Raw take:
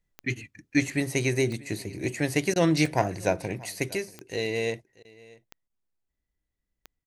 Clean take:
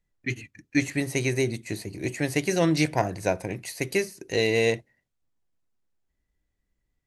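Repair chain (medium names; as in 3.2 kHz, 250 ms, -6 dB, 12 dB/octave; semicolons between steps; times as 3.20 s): de-click; interpolate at 2.54/5.03/5.68 s, 17 ms; inverse comb 636 ms -22.5 dB; trim 0 dB, from 3.95 s +6 dB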